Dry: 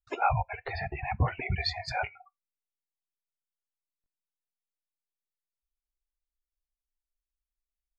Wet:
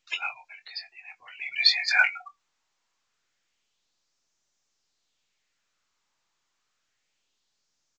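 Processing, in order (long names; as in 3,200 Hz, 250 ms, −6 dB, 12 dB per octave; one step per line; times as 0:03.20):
double-tracking delay 22 ms −8 dB
auto-filter high-pass sine 0.28 Hz 930–5,900 Hz
level +9 dB
mu-law 128 kbit/s 16,000 Hz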